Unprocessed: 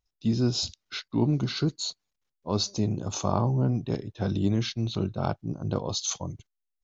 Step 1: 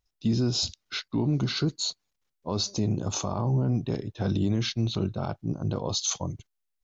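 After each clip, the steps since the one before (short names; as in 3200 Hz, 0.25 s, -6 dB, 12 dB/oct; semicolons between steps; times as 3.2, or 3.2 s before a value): limiter -19.5 dBFS, peak gain reduction 10 dB; gain +2.5 dB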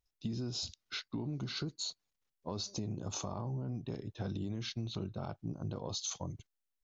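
compressor, threshold -29 dBFS, peak gain reduction 8.5 dB; gain -6 dB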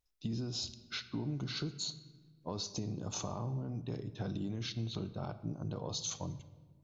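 shoebox room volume 1300 m³, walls mixed, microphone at 0.43 m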